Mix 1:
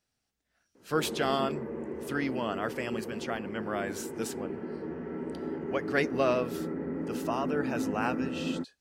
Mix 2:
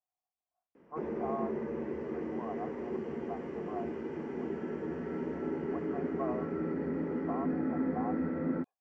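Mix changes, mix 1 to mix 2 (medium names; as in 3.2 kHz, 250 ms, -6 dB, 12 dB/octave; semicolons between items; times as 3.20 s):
speech: add cascade formant filter a; background: remove distance through air 140 m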